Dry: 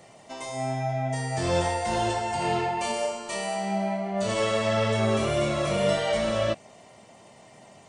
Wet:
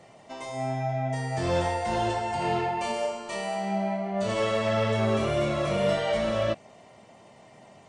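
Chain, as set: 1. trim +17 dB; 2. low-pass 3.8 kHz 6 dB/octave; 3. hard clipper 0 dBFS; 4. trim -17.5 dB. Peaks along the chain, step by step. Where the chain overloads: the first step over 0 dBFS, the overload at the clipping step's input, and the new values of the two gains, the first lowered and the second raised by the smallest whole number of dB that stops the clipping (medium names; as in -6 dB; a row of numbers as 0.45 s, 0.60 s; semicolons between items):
+4.5 dBFS, +4.0 dBFS, 0.0 dBFS, -17.5 dBFS; step 1, 4.0 dB; step 1 +13 dB, step 4 -13.5 dB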